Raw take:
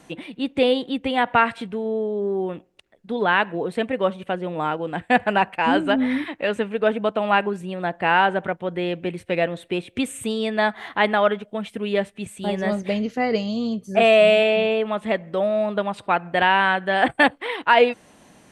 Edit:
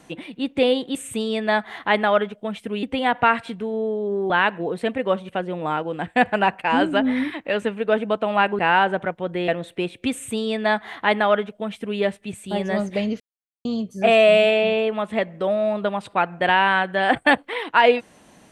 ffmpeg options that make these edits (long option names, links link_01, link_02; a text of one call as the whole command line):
ffmpeg -i in.wav -filter_complex "[0:a]asplit=8[link_01][link_02][link_03][link_04][link_05][link_06][link_07][link_08];[link_01]atrim=end=0.952[link_09];[link_02]atrim=start=10.048:end=11.932[link_10];[link_03]atrim=start=0.948:end=2.422[link_11];[link_04]atrim=start=3.238:end=7.532[link_12];[link_05]atrim=start=8.008:end=8.902[link_13];[link_06]atrim=start=9.408:end=13.13,asetpts=PTS-STARTPTS,afade=type=out:start_time=3.718:duration=0.004:curve=hsin[link_14];[link_07]atrim=start=13.13:end=13.58,asetpts=PTS-STARTPTS,volume=0[link_15];[link_08]atrim=start=13.58,asetpts=PTS-STARTPTS,afade=type=in:duration=0.004:curve=hsin[link_16];[link_09][link_10]acrossfade=duration=0.004:curve1=hsin:curve2=hsin[link_17];[link_17][link_11]acrossfade=duration=0.004:curve1=hsin:curve2=hsin[link_18];[link_18][link_12]acrossfade=duration=0.004:curve1=hsin:curve2=hsin[link_19];[link_19][link_13]acrossfade=duration=0.004:curve1=hsin:curve2=hsin[link_20];[link_14][link_15][link_16]concat=n=3:v=0:a=1[link_21];[link_20][link_21]acrossfade=duration=0.004:curve1=hsin:curve2=hsin" out.wav